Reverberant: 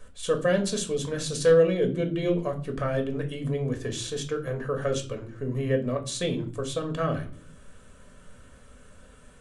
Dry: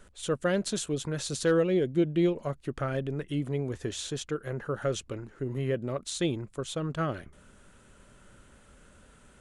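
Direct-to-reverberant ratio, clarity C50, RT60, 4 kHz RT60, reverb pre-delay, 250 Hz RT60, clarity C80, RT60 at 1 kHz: 3.5 dB, 13.5 dB, 0.45 s, 0.35 s, 4 ms, 0.75 s, 18.0 dB, 0.45 s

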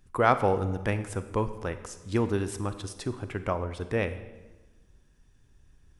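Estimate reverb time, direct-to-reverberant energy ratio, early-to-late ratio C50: 1.2 s, 10.5 dB, 12.0 dB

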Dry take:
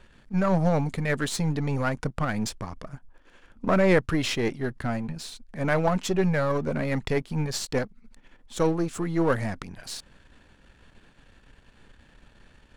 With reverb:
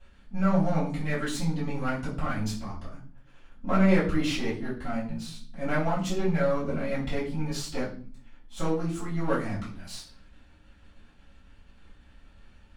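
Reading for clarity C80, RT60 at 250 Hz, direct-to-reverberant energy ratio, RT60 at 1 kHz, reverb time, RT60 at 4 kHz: 12.5 dB, 0.75 s, -11.0 dB, 0.40 s, 0.45 s, 0.40 s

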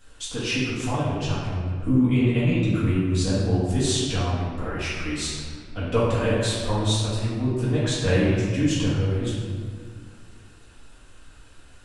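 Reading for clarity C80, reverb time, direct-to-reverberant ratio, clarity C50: 1.0 dB, 2.0 s, -11.0 dB, -2.0 dB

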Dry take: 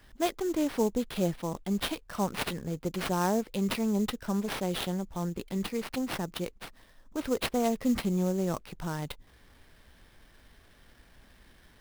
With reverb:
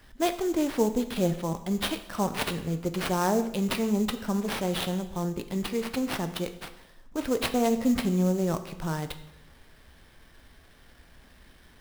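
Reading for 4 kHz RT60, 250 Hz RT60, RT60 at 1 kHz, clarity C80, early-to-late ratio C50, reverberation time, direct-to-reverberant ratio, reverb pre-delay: 0.80 s, 0.95 s, 0.90 s, 14.5 dB, 12.5 dB, 0.90 s, 9.0 dB, 10 ms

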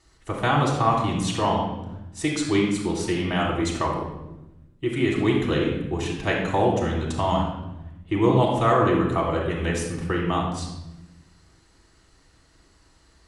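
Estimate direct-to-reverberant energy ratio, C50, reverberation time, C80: -3.5 dB, 2.5 dB, 0.95 s, 5.5 dB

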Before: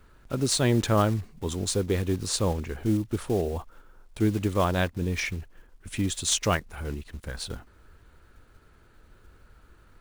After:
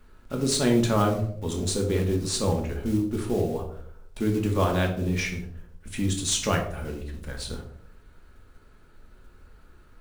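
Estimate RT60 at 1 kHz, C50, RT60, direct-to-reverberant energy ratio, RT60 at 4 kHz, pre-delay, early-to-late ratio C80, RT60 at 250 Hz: 0.55 s, 8.0 dB, 0.70 s, 1.5 dB, 0.40 s, 3 ms, 11.5 dB, 0.80 s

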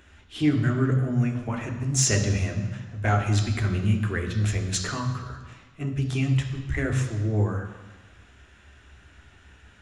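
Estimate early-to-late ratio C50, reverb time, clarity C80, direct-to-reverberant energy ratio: 7.5 dB, 1.3 s, 9.0 dB, 2.5 dB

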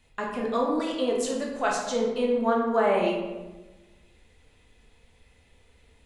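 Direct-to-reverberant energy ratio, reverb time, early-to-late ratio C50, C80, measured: -2.5 dB, 1.2 s, 2.5 dB, 5.0 dB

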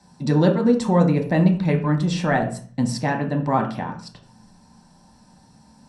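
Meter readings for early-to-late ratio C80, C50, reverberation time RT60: 13.5 dB, 9.5 dB, 0.40 s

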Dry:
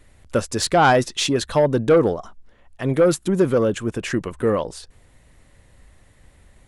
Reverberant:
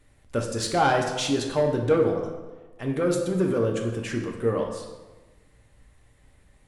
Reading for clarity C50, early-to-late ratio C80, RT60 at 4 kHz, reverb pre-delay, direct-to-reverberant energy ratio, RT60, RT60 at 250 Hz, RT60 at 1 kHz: 5.5 dB, 7.5 dB, 0.85 s, 3 ms, 1.5 dB, 1.2 s, 1.3 s, 1.2 s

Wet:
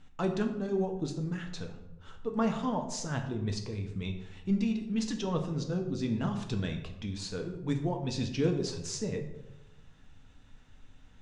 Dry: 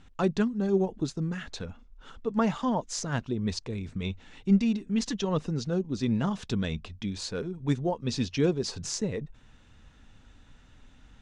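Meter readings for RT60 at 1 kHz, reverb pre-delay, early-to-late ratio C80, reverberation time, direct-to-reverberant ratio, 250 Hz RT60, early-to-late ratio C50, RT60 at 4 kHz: 0.85 s, 5 ms, 11.0 dB, 1.0 s, 3.5 dB, 1.1 s, 8.5 dB, 0.55 s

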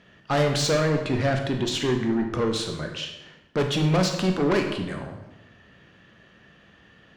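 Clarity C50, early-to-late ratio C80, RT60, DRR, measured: 6.0 dB, 8.5 dB, 1.0 s, 3.5 dB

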